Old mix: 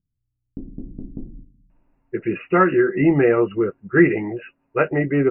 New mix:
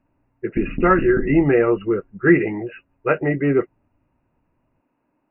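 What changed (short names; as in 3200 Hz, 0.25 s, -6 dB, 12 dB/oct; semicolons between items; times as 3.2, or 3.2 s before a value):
speech: entry -1.70 s; background +8.0 dB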